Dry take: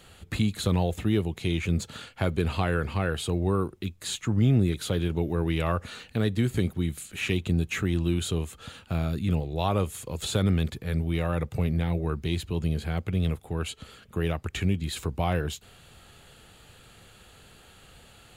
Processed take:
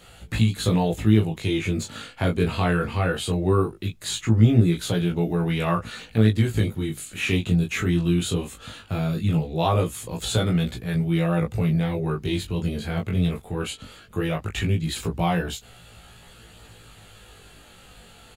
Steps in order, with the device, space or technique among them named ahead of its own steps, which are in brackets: double-tracked vocal (doubler 18 ms -4 dB; chorus 0.19 Hz, delay 16.5 ms, depth 6 ms); gain +5.5 dB

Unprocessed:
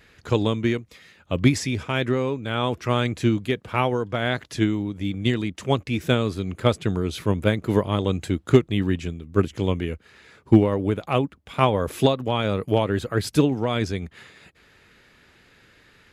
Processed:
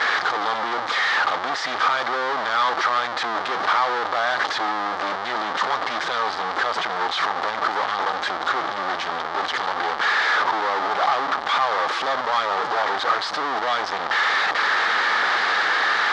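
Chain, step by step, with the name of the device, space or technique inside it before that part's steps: home computer beeper (infinite clipping; speaker cabinet 660–4300 Hz, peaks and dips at 810 Hz +8 dB, 1200 Hz +9 dB, 1700 Hz +4 dB, 2600 Hz -9 dB); gain +3 dB

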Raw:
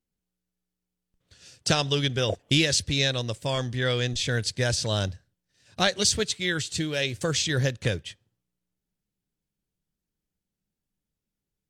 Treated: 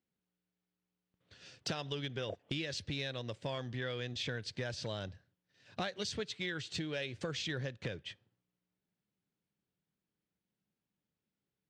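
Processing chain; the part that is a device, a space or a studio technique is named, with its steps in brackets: AM radio (BPF 100–3600 Hz; compressor 6:1, threshold -35 dBFS, peak gain reduction 15.5 dB; soft clip -23 dBFS, distortion -26 dB); low shelf 160 Hz -3 dB

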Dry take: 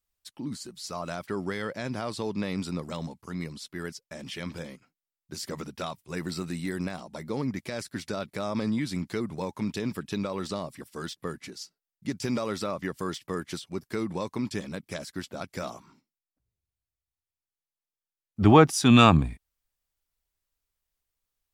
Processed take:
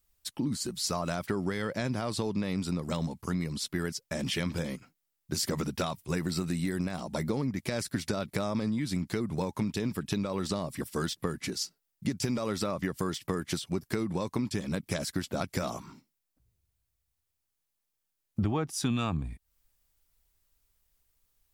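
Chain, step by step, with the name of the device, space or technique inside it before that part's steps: ASMR close-microphone chain (low shelf 220 Hz +6.5 dB; compressor 10:1, threshold -33 dBFS, peak gain reduction 23.5 dB; high shelf 7700 Hz +5.5 dB); gain +6 dB

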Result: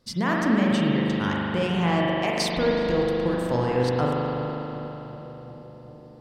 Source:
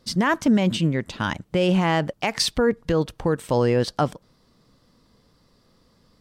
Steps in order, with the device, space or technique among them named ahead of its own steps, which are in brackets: dub delay into a spring reverb (darkening echo 0.374 s, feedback 80%, low-pass 1300 Hz, level -14 dB; spring tank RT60 3.7 s, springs 40 ms, chirp 70 ms, DRR -4 dB); gain -6 dB

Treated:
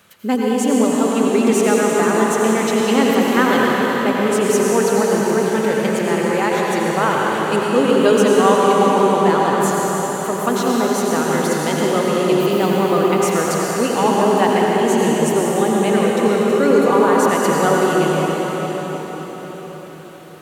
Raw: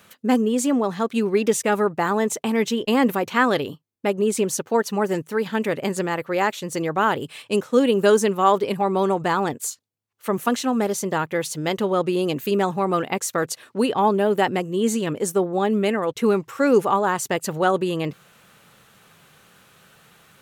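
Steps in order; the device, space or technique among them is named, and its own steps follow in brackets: cathedral (reverb RT60 5.5 s, pre-delay 79 ms, DRR -4.5 dB)

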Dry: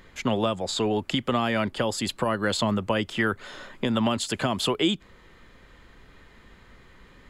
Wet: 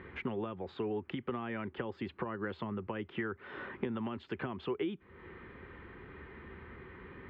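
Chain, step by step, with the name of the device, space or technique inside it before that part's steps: bass amplifier (compressor 5:1, threshold -40 dBFS, peak gain reduction 19 dB; speaker cabinet 73–2400 Hz, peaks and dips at 79 Hz +7 dB, 380 Hz +8 dB, 620 Hz -8 dB); gain +3 dB

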